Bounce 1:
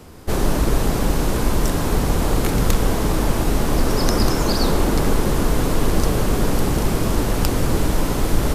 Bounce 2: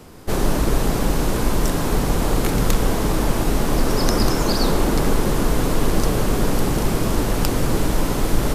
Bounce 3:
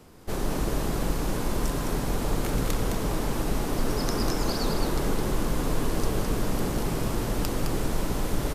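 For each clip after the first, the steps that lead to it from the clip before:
peaking EQ 72 Hz -7.5 dB 0.45 oct
delay 212 ms -5 dB; trim -9 dB

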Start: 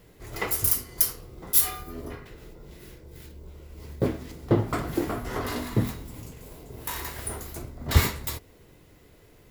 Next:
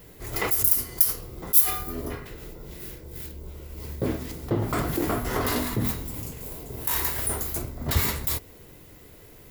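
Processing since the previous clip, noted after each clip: treble shelf 11 kHz +11.5 dB; in parallel at +2 dB: compressor with a negative ratio -29 dBFS, ratio -1; on the sum: trim -6 dB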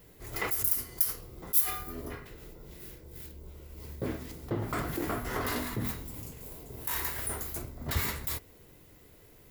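dynamic bell 1.7 kHz, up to +4 dB, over -44 dBFS, Q 1.1; trim -7.5 dB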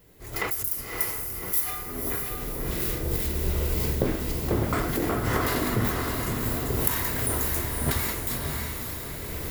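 recorder AGC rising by 17 dB/s; echo that smears into a reverb 581 ms, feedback 51%, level -3.5 dB; trim -1.5 dB

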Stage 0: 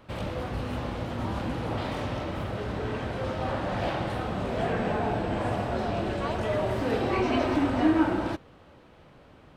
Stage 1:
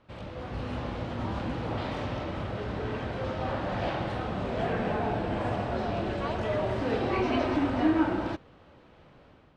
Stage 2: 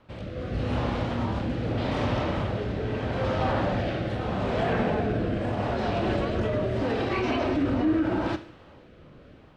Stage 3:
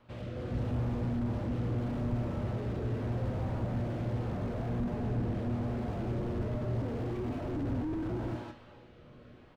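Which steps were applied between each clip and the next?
low-pass 6 kHz 12 dB/octave; level rider gain up to 7 dB; trim -8.5 dB
Schroeder reverb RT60 0.57 s, combs from 26 ms, DRR 11.5 dB; peak limiter -22.5 dBFS, peak gain reduction 9 dB; rotary cabinet horn 0.8 Hz; trim +7 dB
feedback comb 120 Hz, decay 0.36 s, harmonics all, mix 70%; delay 154 ms -12 dB; slew-rate limiter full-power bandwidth 4.9 Hz; trim +3 dB

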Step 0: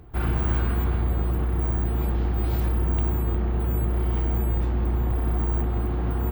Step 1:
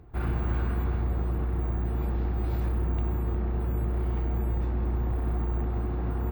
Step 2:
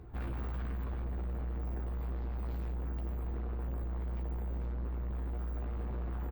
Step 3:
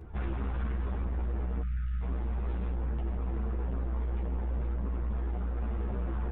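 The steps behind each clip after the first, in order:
treble shelf 4.2 kHz -8.5 dB; band-stop 3.1 kHz, Q 14; trim -4 dB
peak limiter -24 dBFS, peak gain reduction 7 dB; saturation -37.5 dBFS, distortion -9 dB; doubling 15 ms -5 dB
spectral selection erased 1.62–2.01 s, 200–1200 Hz; resampled via 8 kHz; three-phase chorus; trim +7.5 dB

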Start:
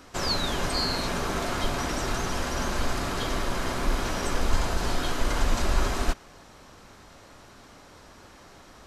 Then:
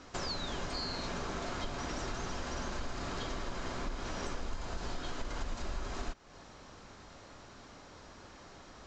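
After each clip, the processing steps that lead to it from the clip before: Chebyshev low-pass 7.3 kHz, order 5; compression 4:1, threshold -33 dBFS, peak gain reduction 15.5 dB; trim -2.5 dB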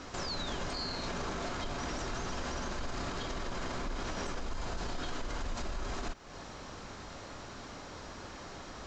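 peak limiter -35.5 dBFS, peak gain reduction 10 dB; trim +7 dB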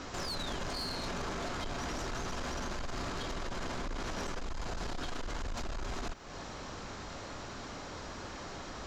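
saturation -35.5 dBFS, distortion -13 dB; trim +3 dB

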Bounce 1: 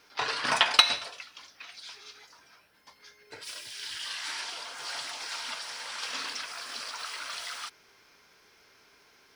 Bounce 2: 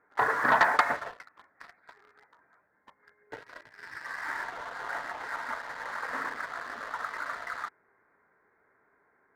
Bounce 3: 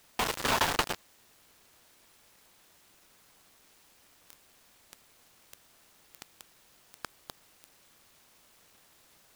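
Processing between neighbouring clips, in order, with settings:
elliptic low-pass 1.9 kHz, stop band 40 dB; bass shelf 83 Hz -8.5 dB; waveshaping leveller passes 2
bit crusher 4-bit; added noise white -55 dBFS; delay time shaken by noise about 1.5 kHz, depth 0.1 ms; trim -5.5 dB

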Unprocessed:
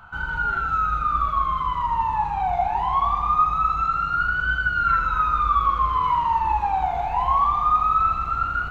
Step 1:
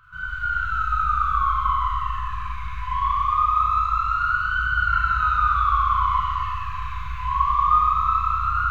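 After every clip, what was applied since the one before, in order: Schroeder reverb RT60 3.2 s, combs from 31 ms, DRR -7.5 dB; FFT band-reject 170–1000 Hz; trim -7.5 dB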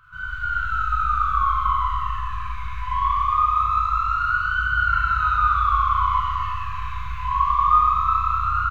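doubling 22 ms -11 dB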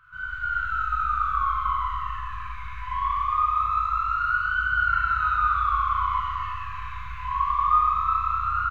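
peaking EQ 1.8 kHz +6.5 dB 1.2 oct; trim -7 dB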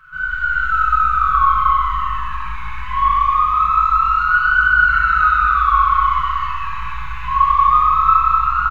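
comb 5.4 ms, depth 88%; frequency-shifting echo 248 ms, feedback 58%, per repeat -52 Hz, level -19 dB; trim +7 dB

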